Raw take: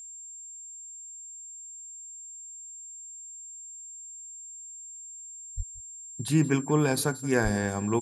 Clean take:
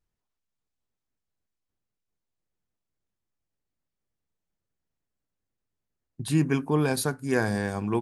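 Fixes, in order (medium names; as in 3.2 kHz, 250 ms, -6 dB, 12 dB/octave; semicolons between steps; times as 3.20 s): de-click; band-stop 7.4 kHz, Q 30; de-plosive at 5.56/7.43 s; inverse comb 177 ms -20 dB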